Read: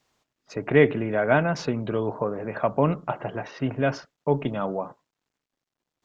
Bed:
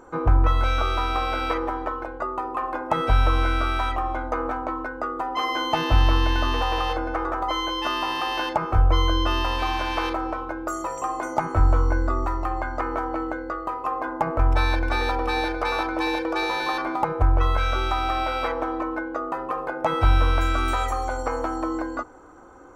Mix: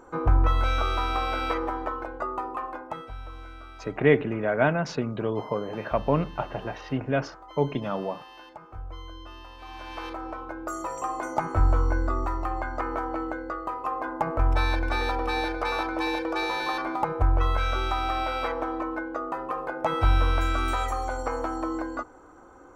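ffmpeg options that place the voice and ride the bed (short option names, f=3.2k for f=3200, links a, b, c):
-filter_complex "[0:a]adelay=3300,volume=-2dB[a];[1:a]volume=15.5dB,afade=t=out:st=2.37:d=0.73:silence=0.11885,afade=t=in:st=9.58:d=1.35:silence=0.125893[b];[a][b]amix=inputs=2:normalize=0"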